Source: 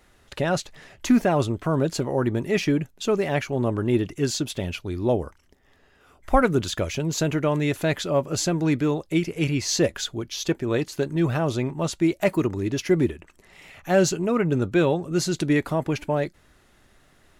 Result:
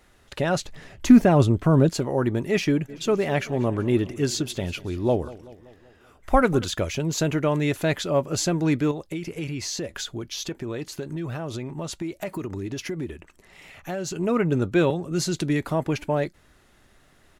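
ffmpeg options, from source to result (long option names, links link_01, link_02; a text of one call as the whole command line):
ffmpeg -i in.wav -filter_complex "[0:a]asettb=1/sr,asplit=3[link_01][link_02][link_03];[link_01]atrim=end=0.604[link_04];[link_02]atrim=start=0.6:end=1.89,asetpts=PTS-STARTPTS,afade=type=in:duration=0.004:curve=qsin,afade=type=out:start_time=1.286:duration=0.004:curve=qsin,lowshelf=frequency=330:gain=8.5[link_05];[link_03]atrim=start=1.886[link_06];[link_04][link_05]acrossfade=duration=0.004:curve1=hsin:curve2=qsin[link_07];[link_07][link_06]acrossfade=duration=0.004:curve1=qsin:curve2=hsin,asplit=3[link_08][link_09][link_10];[link_08]afade=type=out:start_time=2.88:duration=0.02[link_11];[link_09]aecho=1:1:191|382|573|764|955:0.112|0.0628|0.0352|0.0197|0.011,afade=type=in:start_time=2.88:duration=0.02,afade=type=out:start_time=6.64:duration=0.02[link_12];[link_10]afade=type=in:start_time=6.64:duration=0.02[link_13];[link_11][link_12][link_13]amix=inputs=3:normalize=0,asettb=1/sr,asplit=3[link_14][link_15][link_16];[link_14]atrim=end=8.914[link_17];[link_15]atrim=start=8.91:end=14.16,asetpts=PTS-STARTPTS,afade=type=in:duration=0.004:curve=qsin,afade=type=out:start_time=5.246:duration=0.004:curve=qsin,acompressor=threshold=-27dB:ratio=6:attack=3.2:release=140:knee=1:detection=peak[link_18];[link_16]atrim=start=14.156[link_19];[link_17][link_18]acrossfade=duration=0.004:curve1=hsin:curve2=qsin[link_20];[link_20][link_19]acrossfade=duration=0.004:curve1=qsin:curve2=hsin,asettb=1/sr,asplit=3[link_21][link_22][link_23];[link_21]atrim=end=14.904[link_24];[link_22]atrim=start=14.9:end=15.7,asetpts=PTS-STARTPTS,afade=type=in:duration=0.004:curve=qsin,afade=type=out:start_time=0.796:duration=0.004:curve=qsin,acrossover=split=250|3000[link_25][link_26][link_27];[link_26]acompressor=threshold=-25dB:ratio=6:attack=3.2:release=140:knee=2.83:detection=peak[link_28];[link_25][link_28][link_27]amix=inputs=3:normalize=0[link_29];[link_23]atrim=start=15.696[link_30];[link_24][link_29]acrossfade=duration=0.004:curve1=hsin:curve2=qsin[link_31];[link_31][link_30]acrossfade=duration=0.004:curve1=qsin:curve2=hsin" out.wav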